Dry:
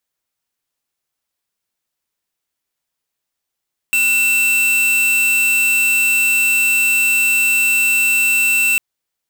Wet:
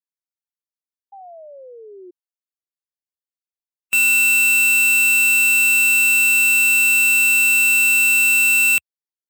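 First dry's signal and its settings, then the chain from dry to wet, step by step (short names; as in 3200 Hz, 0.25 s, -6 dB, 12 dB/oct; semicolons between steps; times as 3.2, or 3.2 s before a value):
tone square 2680 Hz -14.5 dBFS 4.85 s
per-bin expansion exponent 1.5; HPF 74 Hz 24 dB/oct; painted sound fall, 1.12–2.11, 350–810 Hz -39 dBFS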